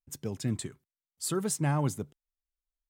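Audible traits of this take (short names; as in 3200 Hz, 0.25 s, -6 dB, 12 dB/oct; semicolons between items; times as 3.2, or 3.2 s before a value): noise floor -96 dBFS; spectral tilt -5.0 dB/oct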